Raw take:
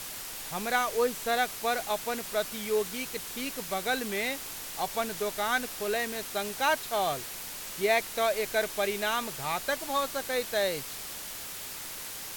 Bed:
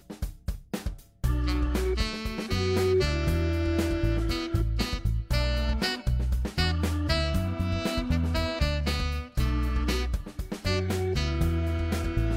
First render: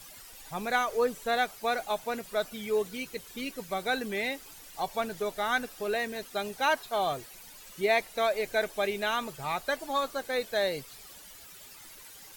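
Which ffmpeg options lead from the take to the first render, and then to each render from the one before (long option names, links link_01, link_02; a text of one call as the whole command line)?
ffmpeg -i in.wav -af "afftdn=noise_reduction=13:noise_floor=-40" out.wav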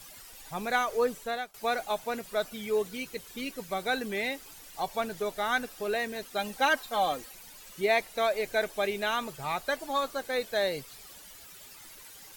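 ffmpeg -i in.wav -filter_complex "[0:a]asettb=1/sr,asplit=3[link_01][link_02][link_03];[link_01]atrim=end=6.384[link_04];[link_02]atrim=start=6.38:end=7.32,asetpts=PTS-STARTPTS,afade=type=in:duration=0.004:curve=qsin,afade=type=out:start_time=0.936:duration=0.004:curve=qsin,aecho=1:1:3.8:0.67,atrim=end_sample=41454[link_05];[link_03]atrim=start=7.316[link_06];[link_04][link_05]acrossfade=duration=0.004:curve1=hsin:curve2=qsin[link_07];[link_07][link_06]acrossfade=duration=0.004:curve1=qsin:curve2=hsin,asplit=2[link_08][link_09];[link_08]atrim=end=1.54,asetpts=PTS-STARTPTS,afade=type=out:start_time=1.14:duration=0.4:silence=0.0841395[link_10];[link_09]atrim=start=1.54,asetpts=PTS-STARTPTS,afade=type=in:duration=0.004:curve=hsin:silence=0.0841395[link_11];[link_10][link_11]concat=n=2:v=0:a=1" out.wav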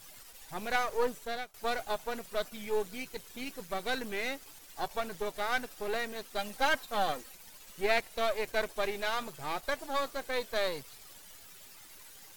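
ffmpeg -i in.wav -af "aeval=exprs='if(lt(val(0),0),0.251*val(0),val(0))':channel_layout=same" out.wav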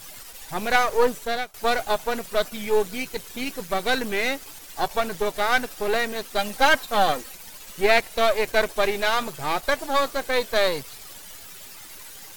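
ffmpeg -i in.wav -af "volume=10.5dB,alimiter=limit=-3dB:level=0:latency=1" out.wav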